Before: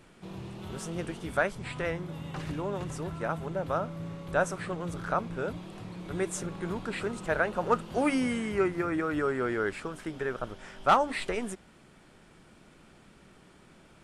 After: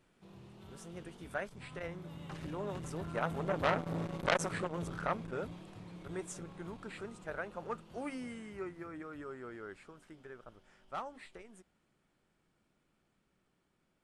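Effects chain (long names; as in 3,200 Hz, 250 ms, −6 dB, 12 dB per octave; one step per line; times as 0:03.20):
source passing by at 0:03.99, 7 m/s, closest 3 metres
saturating transformer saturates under 2,500 Hz
level +5.5 dB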